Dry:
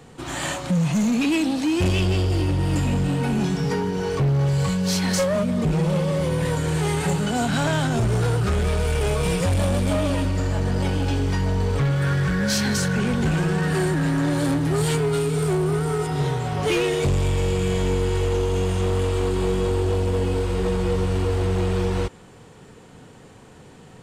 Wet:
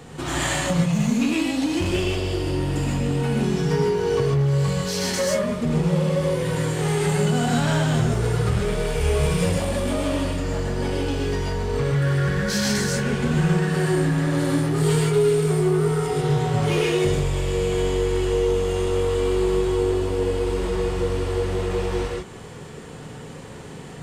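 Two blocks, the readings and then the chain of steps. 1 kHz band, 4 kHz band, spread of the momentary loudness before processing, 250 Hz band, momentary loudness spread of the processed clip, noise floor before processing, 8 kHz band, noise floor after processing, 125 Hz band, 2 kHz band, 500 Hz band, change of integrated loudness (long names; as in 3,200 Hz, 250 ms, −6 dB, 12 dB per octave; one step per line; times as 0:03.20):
−0.5 dB, +0.5 dB, 3 LU, −0.5 dB, 5 LU, −46 dBFS, +0.5 dB, −38 dBFS, −1.0 dB, 0.0 dB, +2.0 dB, 0.0 dB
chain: downward compressor, threshold −28 dBFS, peak gain reduction 9 dB
reverb whose tail is shaped and stops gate 170 ms rising, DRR −2 dB
level +4 dB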